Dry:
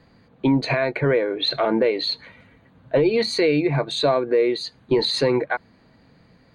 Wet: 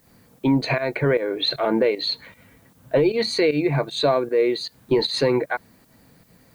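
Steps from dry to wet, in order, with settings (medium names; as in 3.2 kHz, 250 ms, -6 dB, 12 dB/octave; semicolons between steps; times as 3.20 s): volume shaper 154 bpm, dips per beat 1, -13 dB, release 133 ms; added noise blue -62 dBFS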